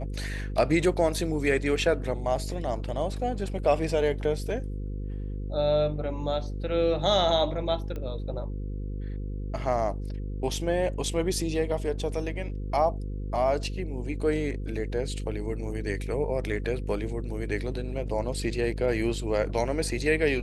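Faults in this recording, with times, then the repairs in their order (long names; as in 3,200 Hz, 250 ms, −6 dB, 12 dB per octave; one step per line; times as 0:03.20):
mains buzz 50 Hz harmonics 10 −33 dBFS
0:07.96: click −24 dBFS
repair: click removal
hum removal 50 Hz, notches 10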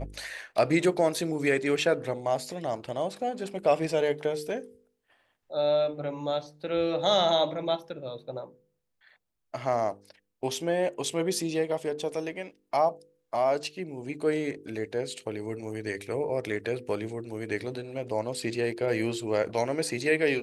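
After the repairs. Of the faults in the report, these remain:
none of them is left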